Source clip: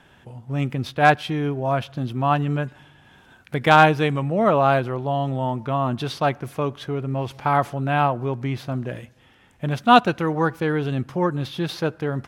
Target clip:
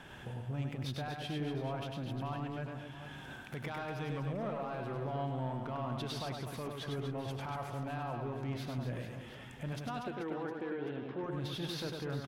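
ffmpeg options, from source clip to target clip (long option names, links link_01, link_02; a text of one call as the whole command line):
ffmpeg -i in.wav -filter_complex "[0:a]acompressor=threshold=-44dB:ratio=2,alimiter=level_in=8dB:limit=-24dB:level=0:latency=1,volume=-8dB,asoftclip=type=tanh:threshold=-34dB,asettb=1/sr,asplit=3[link_01][link_02][link_03];[link_01]atrim=end=10.034[link_04];[link_02]atrim=start=10.03:end=11.24,asetpts=PTS-STARTPTS,afade=type=in:duration=0.004:curve=qsin,afade=type=out:start_time=1.206:duration=0.004:curve=qsin,highpass=140,equalizer=frequency=150:width_type=q:width=4:gain=-10,equalizer=frequency=370:width_type=q:width=4:gain=5,equalizer=frequency=1200:width_type=q:width=4:gain=-5,equalizer=frequency=2700:width_type=q:width=4:gain=-3,lowpass=frequency=3400:width=0.5412,lowpass=frequency=3400:width=1.3066[link_05];[link_03]atrim=start=11.236[link_06];[link_04][link_05]acrossfade=duration=0.004:curve1=hsin:curve2=qsin[link_07];[link_07][link_06]acrossfade=duration=0.004:curve1=qsin:curve2=hsin,aecho=1:1:100|240|436|710.4|1095:0.631|0.398|0.251|0.158|0.1,volume=1.5dB" out.wav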